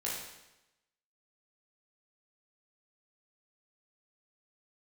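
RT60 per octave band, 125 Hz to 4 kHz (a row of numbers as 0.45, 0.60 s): 0.95, 0.95, 0.95, 0.95, 0.95, 0.90 s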